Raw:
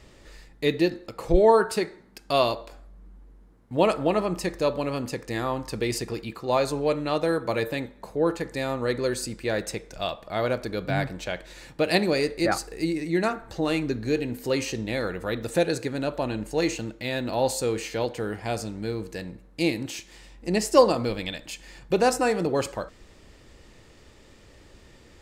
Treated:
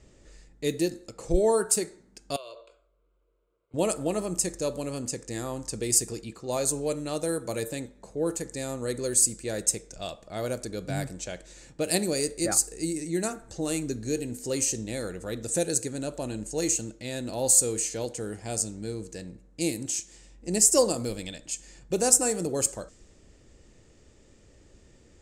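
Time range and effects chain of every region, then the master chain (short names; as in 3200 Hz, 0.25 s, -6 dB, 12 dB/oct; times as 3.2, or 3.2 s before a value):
2.36–3.74 three-band isolator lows -20 dB, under 370 Hz, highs -24 dB, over 7200 Hz + compressor 12:1, threshold -29 dBFS + fixed phaser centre 1200 Hz, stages 8
whole clip: resonant high shelf 5400 Hz +10 dB, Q 1.5; low-pass opened by the level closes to 3000 Hz, open at -21 dBFS; graphic EQ 1000/2000/8000 Hz -7/-4/+7 dB; gain -3.5 dB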